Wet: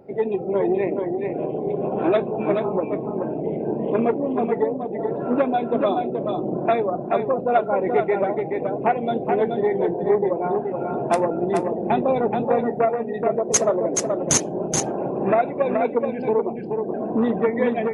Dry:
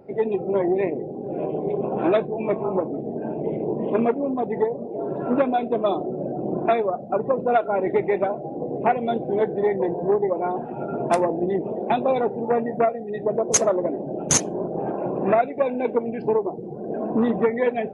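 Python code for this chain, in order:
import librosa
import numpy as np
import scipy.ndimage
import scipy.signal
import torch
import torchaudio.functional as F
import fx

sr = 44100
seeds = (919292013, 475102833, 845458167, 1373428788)

p1 = fx.bass_treble(x, sr, bass_db=6, treble_db=-10, at=(11.75, 12.43))
y = p1 + fx.echo_single(p1, sr, ms=427, db=-5.0, dry=0)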